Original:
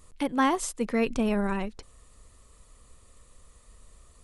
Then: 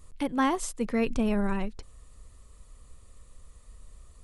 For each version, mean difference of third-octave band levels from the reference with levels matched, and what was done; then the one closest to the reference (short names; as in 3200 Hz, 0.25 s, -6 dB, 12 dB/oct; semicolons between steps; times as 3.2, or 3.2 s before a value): 1.0 dB: low shelf 140 Hz +8 dB; gain -2.5 dB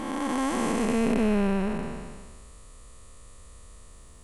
8.0 dB: time blur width 0.734 s; gain +7.5 dB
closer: first